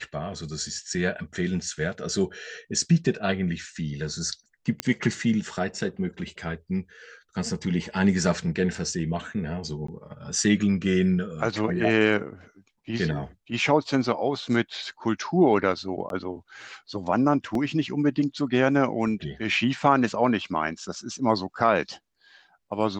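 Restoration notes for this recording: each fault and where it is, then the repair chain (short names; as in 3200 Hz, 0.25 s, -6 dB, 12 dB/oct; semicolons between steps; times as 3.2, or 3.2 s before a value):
4.8 pop -9 dBFS
9.87–9.88 gap 14 ms
16.09–16.1 gap 12 ms
17.55 gap 2.5 ms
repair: de-click; interpolate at 9.87, 14 ms; interpolate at 16.09, 12 ms; interpolate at 17.55, 2.5 ms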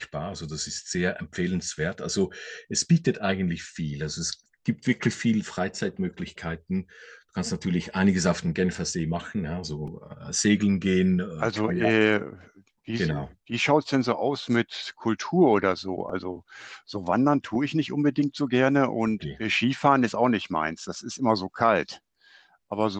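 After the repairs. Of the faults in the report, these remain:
none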